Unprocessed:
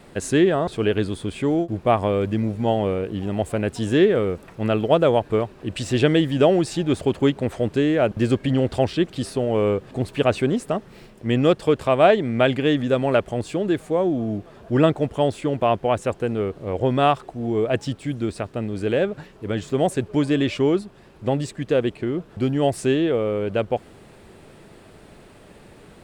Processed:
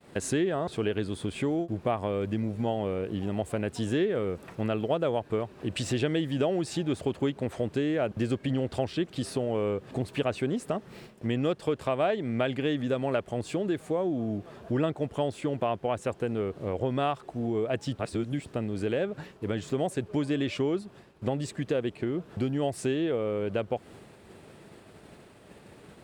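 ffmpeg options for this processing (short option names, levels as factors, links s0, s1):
-filter_complex "[0:a]asplit=3[s0][s1][s2];[s0]atrim=end=17.992[s3];[s1]atrim=start=17.988:end=18.462,asetpts=PTS-STARTPTS,areverse[s4];[s2]atrim=start=18.458[s5];[s3][s4]acrossfade=d=0.004:c1=hsin:c2=hsin[s6];[s6][s5]acrossfade=d=0.004:c1=hsin:c2=hsin,highpass=64,agate=range=0.0224:threshold=0.00794:ratio=3:detection=peak,acompressor=threshold=0.0355:ratio=2.5"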